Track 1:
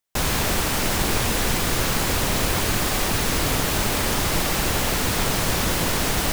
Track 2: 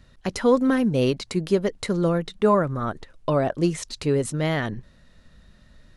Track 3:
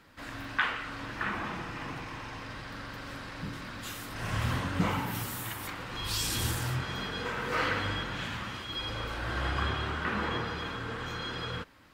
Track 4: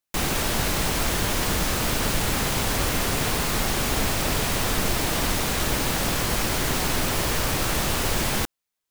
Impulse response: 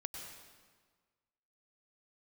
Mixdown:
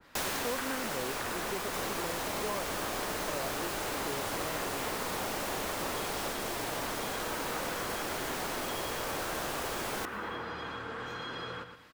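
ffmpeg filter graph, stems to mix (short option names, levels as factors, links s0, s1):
-filter_complex "[0:a]volume=0.501[s0];[1:a]volume=0.355[s1];[2:a]acompressor=threshold=0.0224:ratio=6,volume=1.19,asplit=2[s2][s3];[s3]volume=0.355[s4];[3:a]adelay=1600,volume=0.631,asplit=2[s5][s6];[s6]volume=0.237[s7];[4:a]atrim=start_sample=2205[s8];[s7][s8]afir=irnorm=-1:irlink=0[s9];[s4]aecho=0:1:117|234|351|468:1|0.29|0.0841|0.0244[s10];[s0][s1][s2][s5][s9][s10]amix=inputs=6:normalize=0,lowshelf=f=190:g=-12,acrossover=split=290|670[s11][s12][s13];[s11]acompressor=threshold=0.00501:ratio=4[s14];[s12]acompressor=threshold=0.0112:ratio=4[s15];[s13]acompressor=threshold=0.0282:ratio=4[s16];[s14][s15][s16]amix=inputs=3:normalize=0,adynamicequalizer=threshold=0.00447:dfrequency=1700:dqfactor=0.7:tfrequency=1700:tqfactor=0.7:attack=5:release=100:ratio=0.375:range=3:mode=cutabove:tftype=highshelf"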